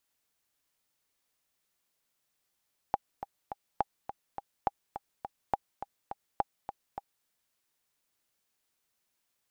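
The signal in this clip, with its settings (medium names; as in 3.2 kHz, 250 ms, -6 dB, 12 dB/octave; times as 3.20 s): metronome 208 bpm, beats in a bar 3, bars 5, 807 Hz, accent 11 dB -13 dBFS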